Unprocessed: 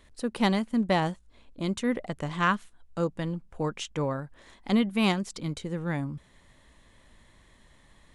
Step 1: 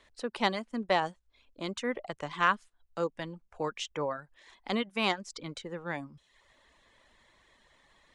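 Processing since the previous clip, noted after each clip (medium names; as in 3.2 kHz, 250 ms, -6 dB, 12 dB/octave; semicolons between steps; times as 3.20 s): three-band isolator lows -12 dB, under 370 Hz, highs -19 dB, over 7.8 kHz; reverb removal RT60 0.65 s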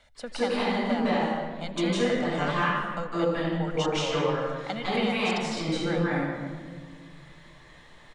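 compression, threshold -33 dBFS, peak gain reduction 13 dB; delay 80 ms -23.5 dB; reverberation RT60 1.6 s, pre-delay 151 ms, DRR -8.5 dB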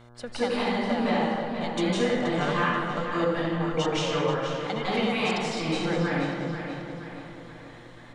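tape echo 480 ms, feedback 53%, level -7 dB, low-pass 5.4 kHz; mains buzz 120 Hz, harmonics 14, -52 dBFS -5 dB/octave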